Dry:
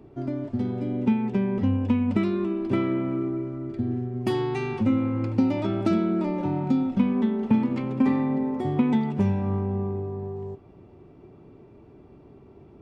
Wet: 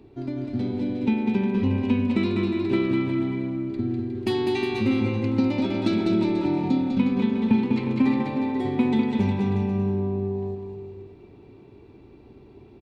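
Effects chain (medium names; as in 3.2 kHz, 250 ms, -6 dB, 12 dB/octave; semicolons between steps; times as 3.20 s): graphic EQ with 31 bands 160 Hz -8 dB, 630 Hz -7 dB, 1.25 kHz -6 dB, 2.5 kHz +5 dB, 4 kHz +11 dB; bouncing-ball echo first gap 200 ms, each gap 0.8×, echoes 5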